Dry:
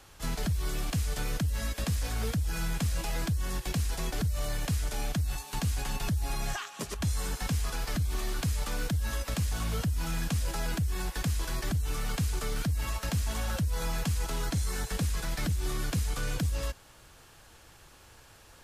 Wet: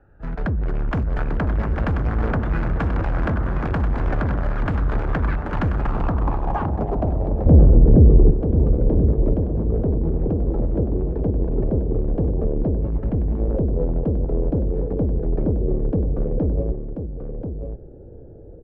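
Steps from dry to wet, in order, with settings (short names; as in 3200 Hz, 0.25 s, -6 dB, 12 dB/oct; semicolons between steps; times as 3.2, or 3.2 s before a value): Wiener smoothing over 41 samples; AGC gain up to 13 dB; hard clip -21 dBFS, distortion -9 dB; echoes that change speed 0.648 s, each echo +6 st, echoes 3, each echo -6 dB; soft clip -19.5 dBFS, distortion -18 dB; 7.46–8.31 low shelf 430 Hz +11.5 dB; echo 1.035 s -8 dB; low-pass sweep 1500 Hz -> 450 Hz, 5.68–7.84; 12.9–13.39 graphic EQ 500/2000/8000 Hz -6/+7/-6 dB; gain +3 dB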